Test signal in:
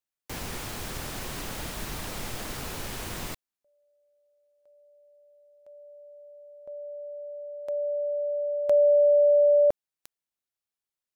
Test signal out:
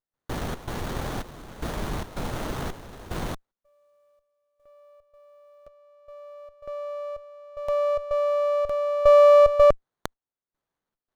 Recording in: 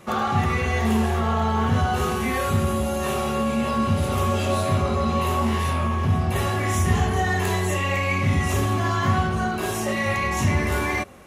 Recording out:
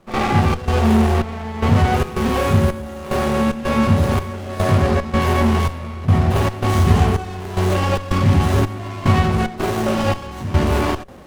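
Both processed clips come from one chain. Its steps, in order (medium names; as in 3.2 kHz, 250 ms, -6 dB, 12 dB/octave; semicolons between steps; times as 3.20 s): trance gate ".xxx.xxxx.." 111 bpm -12 dB; sliding maximum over 17 samples; trim +7 dB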